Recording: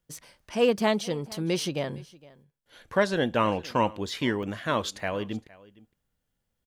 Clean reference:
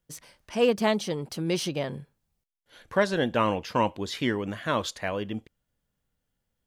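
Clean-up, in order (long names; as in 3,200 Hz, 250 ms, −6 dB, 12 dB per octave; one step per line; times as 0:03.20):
repair the gap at 0:02.50/0:03.67/0:04.09/0:04.43/0:05.00, 1.5 ms
echo removal 462 ms −22 dB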